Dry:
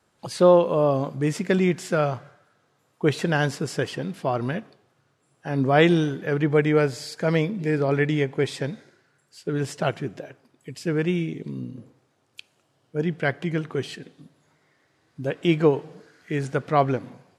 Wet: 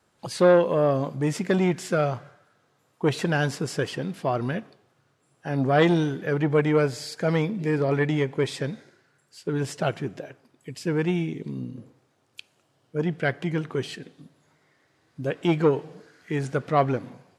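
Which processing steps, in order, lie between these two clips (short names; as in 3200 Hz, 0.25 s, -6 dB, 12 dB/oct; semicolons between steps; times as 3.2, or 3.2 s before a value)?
core saturation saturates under 550 Hz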